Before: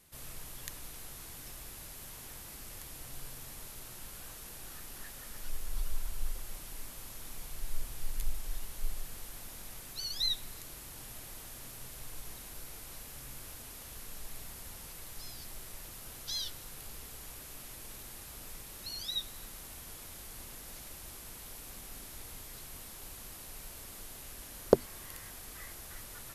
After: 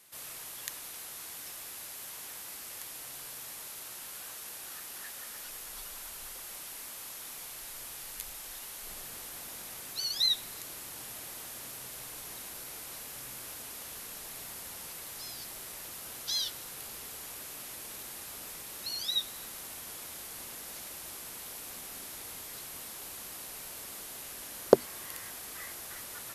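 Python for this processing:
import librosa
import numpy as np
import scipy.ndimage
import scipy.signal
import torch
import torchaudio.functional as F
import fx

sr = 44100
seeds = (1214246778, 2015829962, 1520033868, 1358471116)

y = fx.highpass(x, sr, hz=fx.steps((0.0, 690.0), (8.87, 310.0)), slope=6)
y = F.gain(torch.from_numpy(y), 5.0).numpy()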